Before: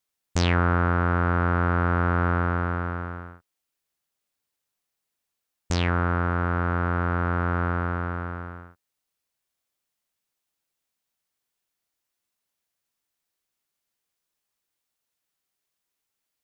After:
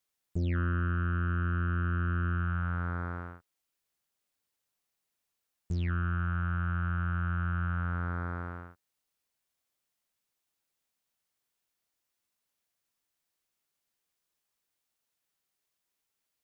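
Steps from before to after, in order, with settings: core saturation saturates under 590 Hz; gain -1.5 dB

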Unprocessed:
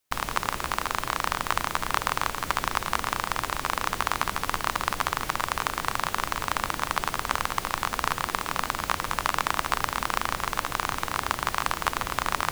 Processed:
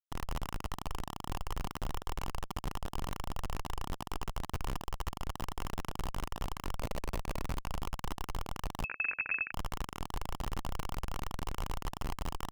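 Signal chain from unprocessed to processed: 6.78–7.6 thirty-one-band EQ 400 Hz +4 dB, 630 Hz +11 dB, 1600 Hz -6 dB; Schmitt trigger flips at -25.5 dBFS; 8.84–9.52 inverted band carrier 2600 Hz; gain -4 dB

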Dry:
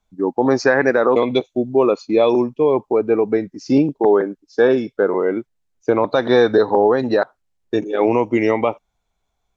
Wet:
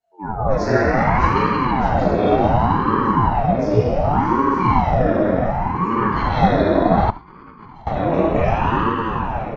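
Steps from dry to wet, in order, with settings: regenerating reverse delay 0.306 s, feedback 75%, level -10.5 dB; shoebox room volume 220 m³, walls hard, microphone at 2.5 m; 7.1–7.87 negative-ratio compressor -25 dBFS, ratio -1; on a send: echo 74 ms -18 dB; on the sum: ring modulator with a swept carrier 420 Hz, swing 65%, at 0.67 Hz; gain -13.5 dB

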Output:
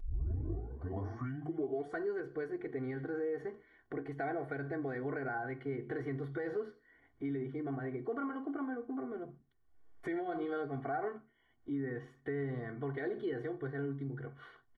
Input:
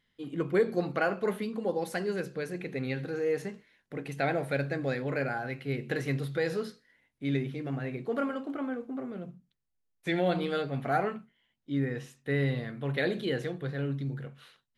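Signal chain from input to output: tape start at the beginning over 2.11 s; limiter -22.5 dBFS, peak gain reduction 6.5 dB; polynomial smoothing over 41 samples; upward compressor, threshold -52 dBFS; comb 2.7 ms, depth 92%; compressor 2:1, threshold -48 dBFS, peak gain reduction 14 dB; gain +4 dB

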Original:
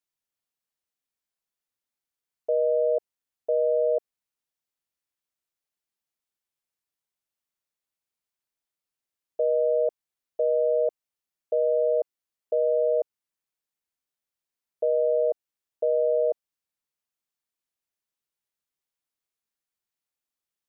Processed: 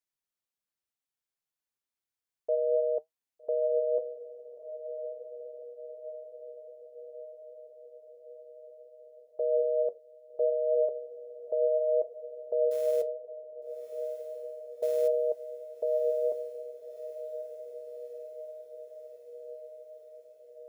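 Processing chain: 12.71–15.08 companded quantiser 6-bit; flange 0.65 Hz, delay 6.1 ms, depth 4.9 ms, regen +70%; diffused feedback echo 1.231 s, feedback 66%, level -10.5 dB

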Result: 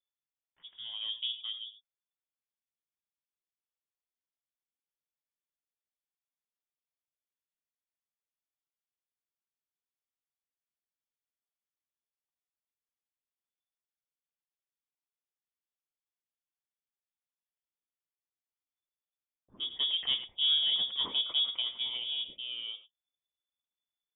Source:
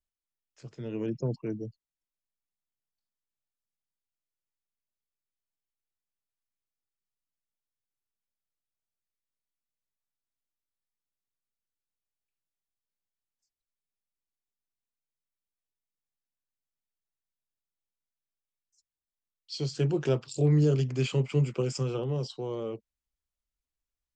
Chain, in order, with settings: added harmonics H 7 -32 dB, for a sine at -14.5 dBFS; non-linear reverb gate 0.12 s rising, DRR 10.5 dB; inverted band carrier 3500 Hz; gain -5 dB

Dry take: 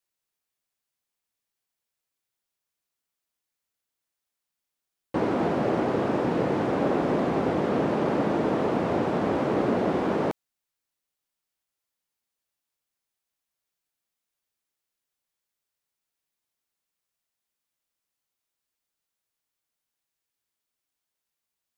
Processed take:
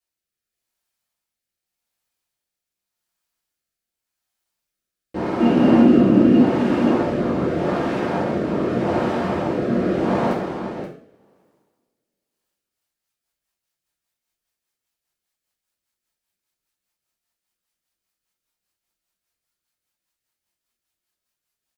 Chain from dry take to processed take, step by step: 5.4–6.39 small resonant body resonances 250/2800 Hz, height 17 dB, ringing for 45 ms; on a send: echo 0.527 s -4 dB; on the sum: two-slope reverb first 0.47 s, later 2.2 s, from -27 dB, DRR -5 dB; rotary speaker horn 0.85 Hz, later 5 Hz, at 12.21; gain -1 dB

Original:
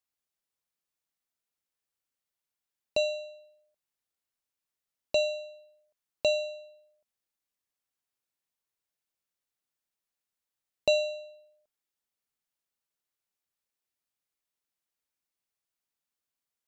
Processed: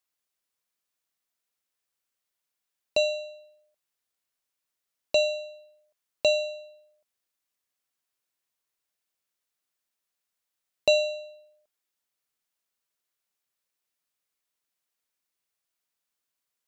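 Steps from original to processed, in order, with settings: low shelf 320 Hz -6 dB; notch 840 Hz, Q 20; gain +4.5 dB

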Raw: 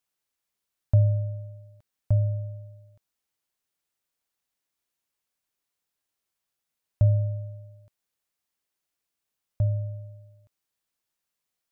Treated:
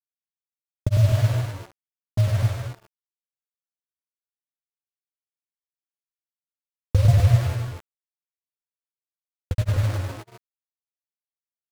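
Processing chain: bit-crush 6-bit; grains, spray 0.1 s, pitch spread up and down by 3 st; gate -37 dBFS, range -29 dB; on a send: tapped delay 0.103/0.187/0.227/0.252 s -5/-11.5/-9/-5.5 dB; on the sum: gain +3.5 dB

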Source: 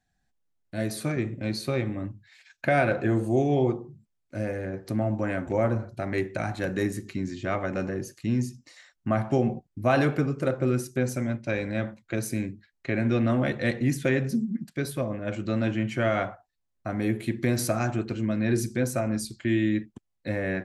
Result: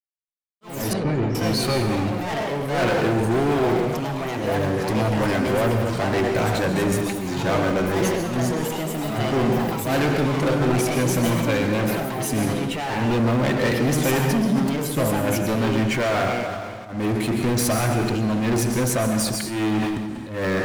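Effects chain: expander -47 dBFS; sample leveller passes 5; auto swell 0.197 s; reverb, pre-delay 0.117 s, DRR 5.5 dB; echoes that change speed 81 ms, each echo +4 st, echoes 3, each echo -6 dB; 0.93–1.35 tape spacing loss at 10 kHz 35 dB; sustainer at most 28 dB/s; gain -7.5 dB

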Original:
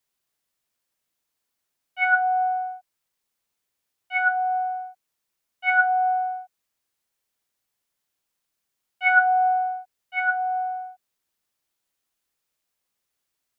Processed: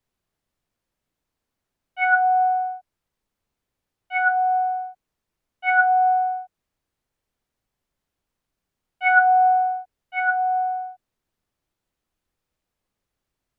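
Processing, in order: tilt -3 dB/oct; gain +2.5 dB

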